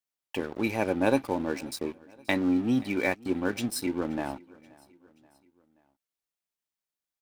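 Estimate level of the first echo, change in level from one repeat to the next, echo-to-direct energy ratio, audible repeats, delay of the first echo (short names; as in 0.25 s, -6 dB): -24.0 dB, -6.0 dB, -23.0 dB, 2, 0.529 s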